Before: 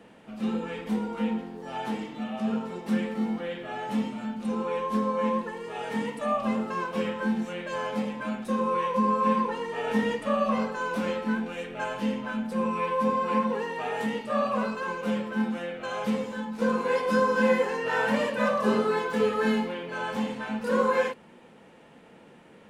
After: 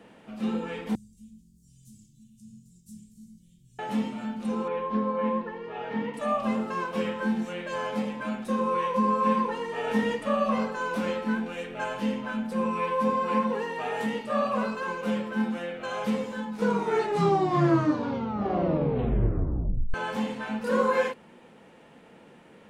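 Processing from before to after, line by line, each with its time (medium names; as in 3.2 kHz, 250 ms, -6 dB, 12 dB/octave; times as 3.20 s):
0.95–3.79 s: elliptic band-stop 120–6900 Hz, stop band 80 dB
4.68–6.14 s: distance through air 270 m
16.49 s: tape stop 3.45 s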